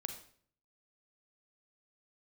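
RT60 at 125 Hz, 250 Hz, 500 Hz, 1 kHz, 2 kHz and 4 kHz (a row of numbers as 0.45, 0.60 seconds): 0.80, 0.65, 0.60, 0.50, 0.50, 0.45 seconds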